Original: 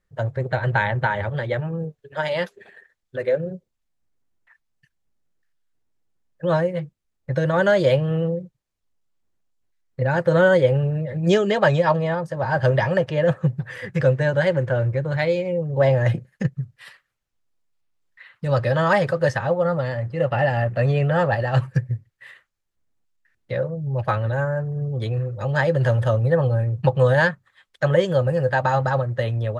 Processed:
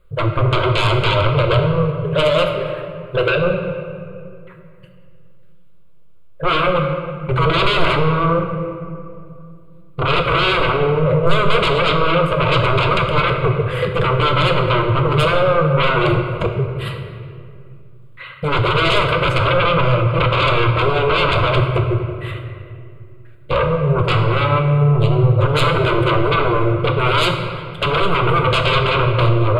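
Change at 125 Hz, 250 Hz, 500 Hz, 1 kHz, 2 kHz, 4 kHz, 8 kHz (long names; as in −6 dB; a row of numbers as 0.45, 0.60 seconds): +4.5 dB, +4.5 dB, +3.0 dB, +9.0 dB, +5.5 dB, +16.0 dB, can't be measured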